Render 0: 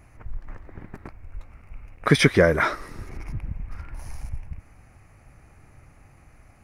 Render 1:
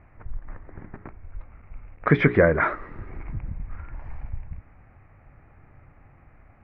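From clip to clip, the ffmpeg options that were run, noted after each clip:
ffmpeg -i in.wav -af "lowpass=frequency=2200:width=0.5412,lowpass=frequency=2200:width=1.3066,bandreject=frequency=60:width_type=h:width=6,bandreject=frequency=120:width_type=h:width=6,bandreject=frequency=180:width_type=h:width=6,bandreject=frequency=240:width_type=h:width=6,bandreject=frequency=300:width_type=h:width=6,bandreject=frequency=360:width_type=h:width=6,bandreject=frequency=420:width_type=h:width=6" out.wav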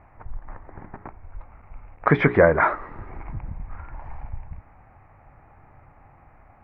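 ffmpeg -i in.wav -af "equalizer=frequency=860:width_type=o:width=1:gain=10,volume=-1dB" out.wav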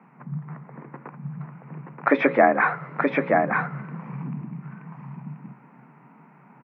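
ffmpeg -i in.wav -af "afreqshift=130,aecho=1:1:927:0.668,volume=-1.5dB" out.wav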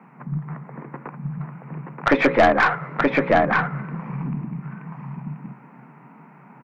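ffmpeg -i in.wav -af "aeval=exprs='(tanh(5.01*val(0)+0.3)-tanh(0.3))/5.01':channel_layout=same,volume=5.5dB" out.wav

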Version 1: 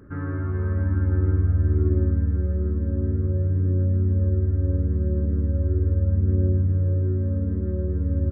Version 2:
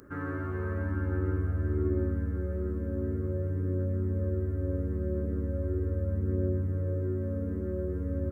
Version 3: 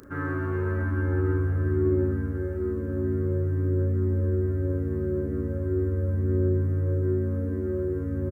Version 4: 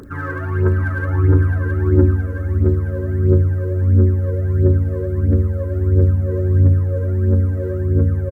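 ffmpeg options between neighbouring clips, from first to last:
ffmpeg -i in.wav -af "bass=frequency=250:gain=-10,treble=frequency=4000:gain=14" out.wav
ffmpeg -i in.wav -filter_complex "[0:a]asplit=2[link_01][link_02];[link_02]adelay=35,volume=-3dB[link_03];[link_01][link_03]amix=inputs=2:normalize=0,volume=3.5dB" out.wav
ffmpeg -i in.wav -filter_complex "[0:a]asplit=2[link_01][link_02];[link_02]aecho=0:1:684:0.531[link_03];[link_01][link_03]amix=inputs=2:normalize=0,aphaser=in_gain=1:out_gain=1:delay=2.1:decay=0.7:speed=1.5:type=triangular,volume=3.5dB" out.wav

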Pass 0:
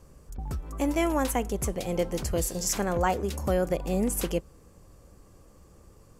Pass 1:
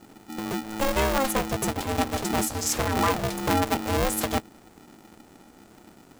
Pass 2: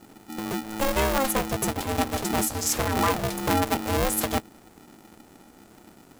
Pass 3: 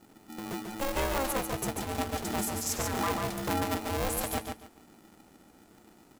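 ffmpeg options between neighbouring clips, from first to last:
ffmpeg -i in.wav -af "aeval=exprs='val(0)*sgn(sin(2*PI*270*n/s))':channel_layout=same,volume=2dB" out.wav
ffmpeg -i in.wav -af "equalizer=frequency=12000:width_type=o:width=0.62:gain=4" out.wav
ffmpeg -i in.wav -af "aecho=1:1:142|284|426:0.562|0.124|0.0272,volume=-7.5dB" out.wav

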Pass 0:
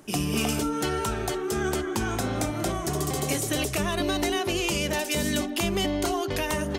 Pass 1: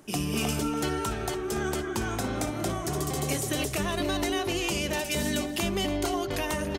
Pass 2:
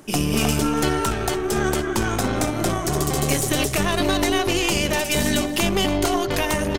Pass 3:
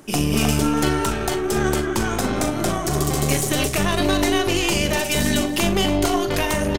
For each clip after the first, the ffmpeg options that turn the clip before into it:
ffmpeg -i in.wav -filter_complex "[0:a]asplit=2[link_01][link_02];[link_02]adelay=285.7,volume=-10dB,highshelf=frequency=4000:gain=-6.43[link_03];[link_01][link_03]amix=inputs=2:normalize=0,volume=-2.5dB" out.wav
ffmpeg -i in.wav -af "aeval=exprs='0.158*(cos(1*acos(clip(val(0)/0.158,-1,1)))-cos(1*PI/2))+0.02*(cos(4*acos(clip(val(0)/0.158,-1,1)))-cos(4*PI/2))':channel_layout=same,volume=7.5dB" out.wav
ffmpeg -i in.wav -filter_complex "[0:a]asplit=2[link_01][link_02];[link_02]adelay=41,volume=-10dB[link_03];[link_01][link_03]amix=inputs=2:normalize=0" out.wav

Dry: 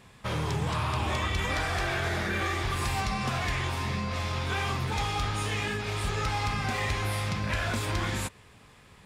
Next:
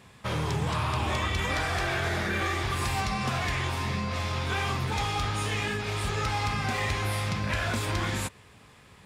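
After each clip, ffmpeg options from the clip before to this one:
ffmpeg -i in.wav -af "highpass=49,volume=1dB" out.wav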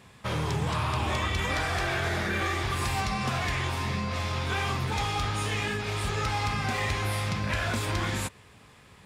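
ffmpeg -i in.wav -af anull out.wav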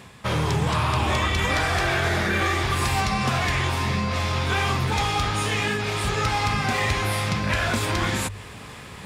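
ffmpeg -i in.wav -af "bandreject=frequency=50:width_type=h:width=6,bandreject=frequency=100:width_type=h:width=6,areverse,acompressor=mode=upward:threshold=-36dB:ratio=2.5,areverse,volume=6dB" out.wav

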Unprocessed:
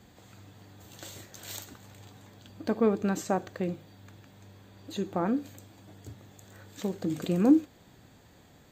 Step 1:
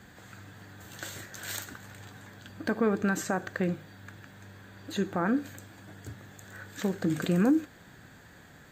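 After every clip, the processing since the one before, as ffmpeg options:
ffmpeg -i in.wav -filter_complex "[0:a]equalizer=frequency=160:width_type=o:width=0.67:gain=3,equalizer=frequency=1600:width_type=o:width=0.67:gain=12,equalizer=frequency=10000:width_type=o:width=0.67:gain=4,acrossover=split=6000[link_01][link_02];[link_01]alimiter=limit=-18dB:level=0:latency=1:release=111[link_03];[link_03][link_02]amix=inputs=2:normalize=0,volume=1.5dB" out.wav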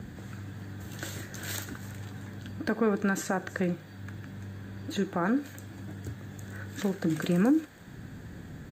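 ffmpeg -i in.wav -filter_complex "[0:a]acrossover=split=370|580|3600[link_01][link_02][link_03][link_04];[link_01]acompressor=mode=upward:threshold=-31dB:ratio=2.5[link_05];[link_04]aecho=1:1:325:0.133[link_06];[link_05][link_02][link_03][link_06]amix=inputs=4:normalize=0" out.wav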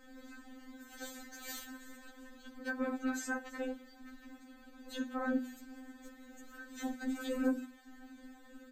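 ffmpeg -i in.wav -af "afftfilt=real='hypot(re,im)*cos(2*PI*random(0))':imag='hypot(re,im)*sin(2*PI*random(1))':win_size=512:overlap=0.75,bandreject=frequency=50:width_type=h:width=6,bandreject=frequency=100:width_type=h:width=6,bandreject=frequency=150:width_type=h:width=6,bandreject=frequency=200:width_type=h:width=6,bandreject=frequency=250:width_type=h:width=6,bandreject=frequency=300:width_type=h:width=6,afftfilt=real='re*3.46*eq(mod(b,12),0)':imag='im*3.46*eq(mod(b,12),0)':win_size=2048:overlap=0.75,volume=1dB" out.wav

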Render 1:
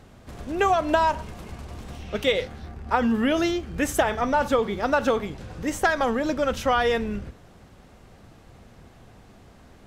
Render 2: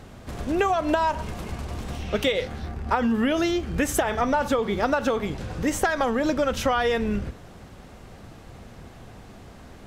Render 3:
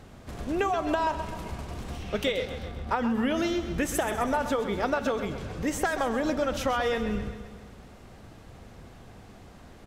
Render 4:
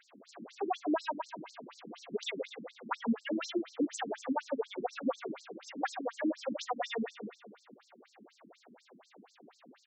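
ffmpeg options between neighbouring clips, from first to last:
ffmpeg -i in.wav -af "acompressor=threshold=-25dB:ratio=6,volume=5.5dB" out.wav
ffmpeg -i in.wav -af "aecho=1:1:130|260|390|520|650|780|910:0.282|0.163|0.0948|0.055|0.0319|0.0185|0.0107,volume=-4.5dB" out.wav
ffmpeg -i in.wav -filter_complex "[0:a]acrossover=split=370|6000[link_01][link_02][link_03];[link_03]asoftclip=type=tanh:threshold=-37.5dB[link_04];[link_01][link_02][link_04]amix=inputs=3:normalize=0,afftfilt=real='re*between(b*sr/1024,240*pow(5900/240,0.5+0.5*sin(2*PI*4.1*pts/sr))/1.41,240*pow(5900/240,0.5+0.5*sin(2*PI*4.1*pts/sr))*1.41)':imag='im*between(b*sr/1024,240*pow(5900/240,0.5+0.5*sin(2*PI*4.1*pts/sr))/1.41,240*pow(5900/240,0.5+0.5*sin(2*PI*4.1*pts/sr))*1.41)':win_size=1024:overlap=0.75" out.wav

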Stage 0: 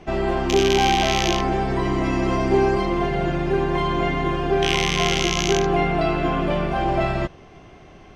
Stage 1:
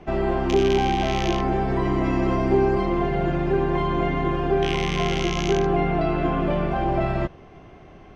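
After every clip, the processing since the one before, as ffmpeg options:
ffmpeg -i in.wav -filter_complex "[0:a]highshelf=frequency=3500:gain=-11.5,acrossover=split=440[link_01][link_02];[link_02]acompressor=threshold=-24dB:ratio=3[link_03];[link_01][link_03]amix=inputs=2:normalize=0" out.wav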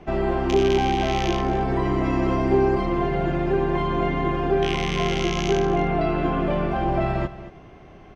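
ffmpeg -i in.wav -af "aecho=1:1:227:0.178" out.wav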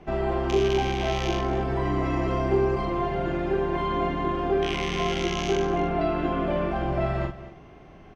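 ffmpeg -i in.wav -filter_complex "[0:a]asplit=2[link_01][link_02];[link_02]adelay=44,volume=-5.5dB[link_03];[link_01][link_03]amix=inputs=2:normalize=0,volume=-3.5dB" out.wav

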